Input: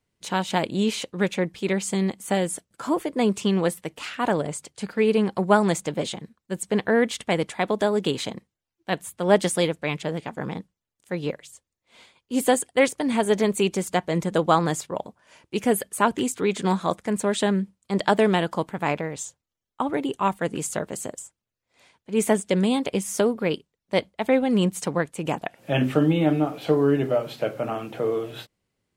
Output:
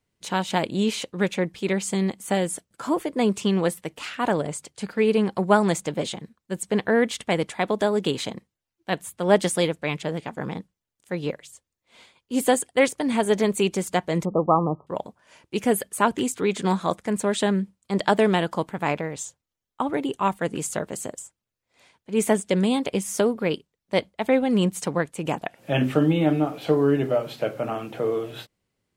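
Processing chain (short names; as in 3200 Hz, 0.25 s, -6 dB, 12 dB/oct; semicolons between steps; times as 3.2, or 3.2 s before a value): 14.25–14.87 brick-wall FIR low-pass 1300 Hz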